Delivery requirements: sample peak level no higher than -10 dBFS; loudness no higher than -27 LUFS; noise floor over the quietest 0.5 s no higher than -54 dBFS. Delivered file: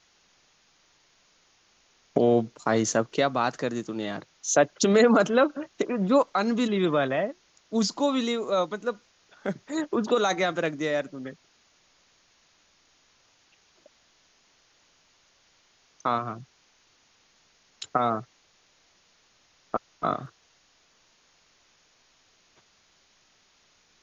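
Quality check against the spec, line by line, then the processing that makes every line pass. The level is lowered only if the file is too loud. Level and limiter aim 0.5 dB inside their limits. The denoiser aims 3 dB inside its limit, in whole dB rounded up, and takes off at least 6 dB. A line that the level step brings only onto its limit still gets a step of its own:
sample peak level -8.5 dBFS: fail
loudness -26.0 LUFS: fail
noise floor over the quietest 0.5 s -64 dBFS: OK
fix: gain -1.5 dB; limiter -10.5 dBFS

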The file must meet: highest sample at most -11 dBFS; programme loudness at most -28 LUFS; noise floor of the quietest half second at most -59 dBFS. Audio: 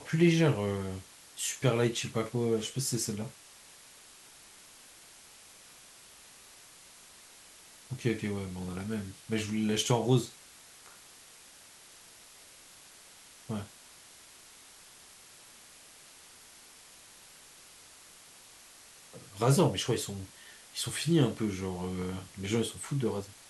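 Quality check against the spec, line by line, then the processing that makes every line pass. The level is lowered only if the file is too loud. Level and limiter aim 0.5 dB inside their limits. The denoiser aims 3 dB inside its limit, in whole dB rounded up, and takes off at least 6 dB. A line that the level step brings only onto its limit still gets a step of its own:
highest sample -12.0 dBFS: OK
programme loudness -31.5 LUFS: OK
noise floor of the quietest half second -55 dBFS: fail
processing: denoiser 7 dB, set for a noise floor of -55 dBFS

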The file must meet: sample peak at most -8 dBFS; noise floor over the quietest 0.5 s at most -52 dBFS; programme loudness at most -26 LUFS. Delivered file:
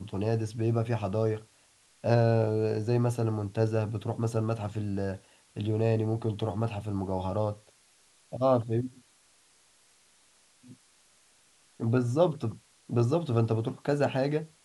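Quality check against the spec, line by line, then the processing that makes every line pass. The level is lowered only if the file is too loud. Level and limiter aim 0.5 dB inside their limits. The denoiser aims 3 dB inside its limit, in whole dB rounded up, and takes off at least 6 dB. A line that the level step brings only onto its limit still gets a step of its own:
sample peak -10.5 dBFS: OK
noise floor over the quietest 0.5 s -63 dBFS: OK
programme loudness -29.5 LUFS: OK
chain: none

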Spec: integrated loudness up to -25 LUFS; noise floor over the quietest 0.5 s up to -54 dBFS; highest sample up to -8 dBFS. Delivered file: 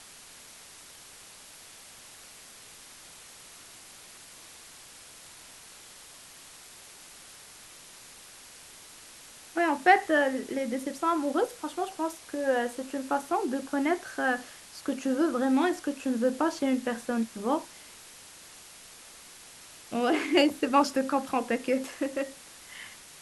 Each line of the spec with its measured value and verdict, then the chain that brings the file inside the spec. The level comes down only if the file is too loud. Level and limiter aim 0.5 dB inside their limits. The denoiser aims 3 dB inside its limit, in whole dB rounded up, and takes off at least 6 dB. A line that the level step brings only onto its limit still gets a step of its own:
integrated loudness -28.5 LUFS: OK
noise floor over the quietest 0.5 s -50 dBFS: fail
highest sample -8.5 dBFS: OK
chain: denoiser 7 dB, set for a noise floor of -50 dBFS

